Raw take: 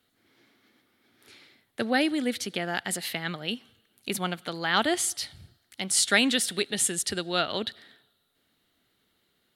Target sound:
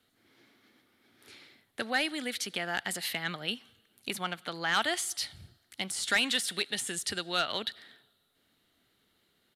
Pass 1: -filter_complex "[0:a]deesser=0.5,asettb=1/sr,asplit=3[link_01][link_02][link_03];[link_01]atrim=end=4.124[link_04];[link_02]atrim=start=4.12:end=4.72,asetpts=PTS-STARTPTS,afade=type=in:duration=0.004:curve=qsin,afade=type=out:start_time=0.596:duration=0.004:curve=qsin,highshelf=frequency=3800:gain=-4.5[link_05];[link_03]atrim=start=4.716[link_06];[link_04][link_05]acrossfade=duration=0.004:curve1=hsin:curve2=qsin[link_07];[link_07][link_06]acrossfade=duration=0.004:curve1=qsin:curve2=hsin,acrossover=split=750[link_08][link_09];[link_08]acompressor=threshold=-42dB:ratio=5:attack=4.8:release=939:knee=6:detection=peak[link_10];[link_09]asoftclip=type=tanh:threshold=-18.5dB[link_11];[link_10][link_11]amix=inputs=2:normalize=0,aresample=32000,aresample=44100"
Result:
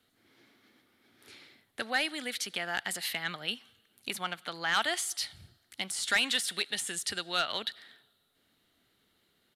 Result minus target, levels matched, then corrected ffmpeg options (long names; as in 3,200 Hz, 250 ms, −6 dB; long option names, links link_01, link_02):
downward compressor: peak gain reduction +5 dB
-filter_complex "[0:a]deesser=0.5,asettb=1/sr,asplit=3[link_01][link_02][link_03];[link_01]atrim=end=4.124[link_04];[link_02]atrim=start=4.12:end=4.72,asetpts=PTS-STARTPTS,afade=type=in:duration=0.004:curve=qsin,afade=type=out:start_time=0.596:duration=0.004:curve=qsin,highshelf=frequency=3800:gain=-4.5[link_05];[link_03]atrim=start=4.716[link_06];[link_04][link_05]acrossfade=duration=0.004:curve1=hsin:curve2=qsin[link_07];[link_07][link_06]acrossfade=duration=0.004:curve1=qsin:curve2=hsin,acrossover=split=750[link_08][link_09];[link_08]acompressor=threshold=-36dB:ratio=5:attack=4.8:release=939:knee=6:detection=peak[link_10];[link_09]asoftclip=type=tanh:threshold=-18.5dB[link_11];[link_10][link_11]amix=inputs=2:normalize=0,aresample=32000,aresample=44100"